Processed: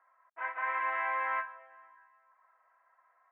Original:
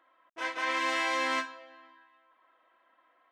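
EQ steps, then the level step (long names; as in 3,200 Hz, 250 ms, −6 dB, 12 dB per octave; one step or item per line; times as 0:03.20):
four-pole ladder high-pass 610 Hz, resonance 25%
Butterworth low-pass 2,100 Hz 36 dB per octave
+3.5 dB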